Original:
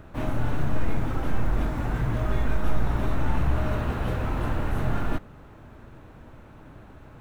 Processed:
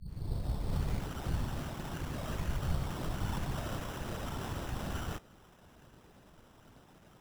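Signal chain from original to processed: tape start-up on the opening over 0.97 s; bass shelf 420 Hz -5.5 dB; whisper effect; sample-and-hold 10×; trim -8 dB

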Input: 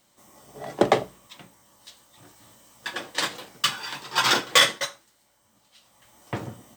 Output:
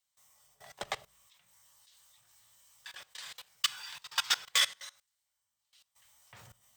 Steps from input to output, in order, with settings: level held to a coarse grid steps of 20 dB; amplifier tone stack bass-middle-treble 10-0-10; trim -1.5 dB

